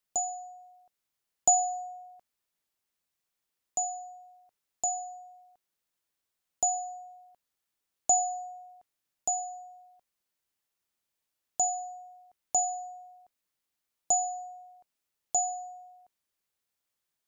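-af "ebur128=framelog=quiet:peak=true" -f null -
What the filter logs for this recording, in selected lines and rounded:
Integrated loudness:
  I:         -29.8 LUFS
  Threshold: -42.4 LUFS
Loudness range:
  LRA:         5.7 LU
  Threshold: -54.1 LUFS
  LRA low:   -37.6 LUFS
  LRA high:  -31.9 LUFS
True peak:
  Peak:      -11.2 dBFS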